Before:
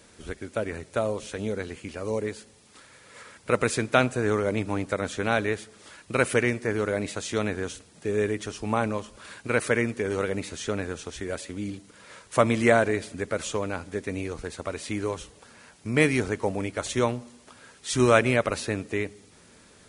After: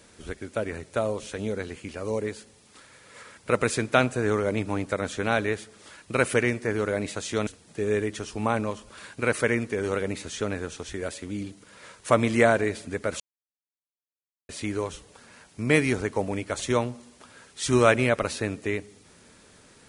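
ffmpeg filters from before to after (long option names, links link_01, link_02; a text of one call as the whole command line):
ffmpeg -i in.wav -filter_complex "[0:a]asplit=4[link_01][link_02][link_03][link_04];[link_01]atrim=end=7.472[link_05];[link_02]atrim=start=7.738:end=13.47,asetpts=PTS-STARTPTS,afade=type=out:start_time=5.728:duration=0.004:curve=hsin[link_06];[link_03]atrim=start=13.47:end=14.76,asetpts=PTS-STARTPTS,volume=0[link_07];[link_04]atrim=start=14.76,asetpts=PTS-STARTPTS,afade=type=in:duration=0.004:curve=hsin[link_08];[link_06][link_07][link_08]concat=n=3:v=0:a=1[link_09];[link_05][link_09]acrossfade=duration=0.004:curve1=hsin:curve2=hsin" out.wav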